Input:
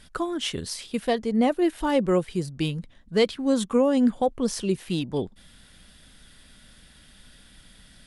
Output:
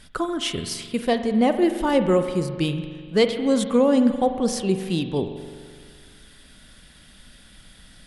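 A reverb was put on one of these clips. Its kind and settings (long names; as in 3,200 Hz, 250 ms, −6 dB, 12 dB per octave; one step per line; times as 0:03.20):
spring reverb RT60 1.9 s, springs 42 ms, chirp 35 ms, DRR 8 dB
level +2.5 dB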